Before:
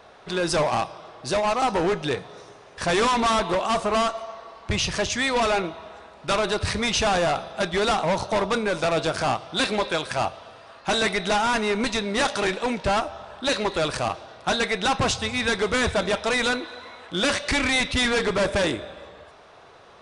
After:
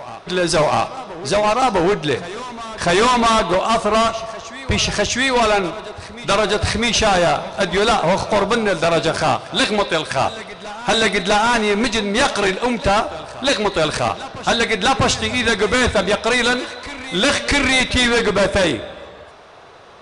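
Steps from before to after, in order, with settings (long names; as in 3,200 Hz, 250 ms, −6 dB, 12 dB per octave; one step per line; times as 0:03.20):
backwards echo 652 ms −16 dB
level +6.5 dB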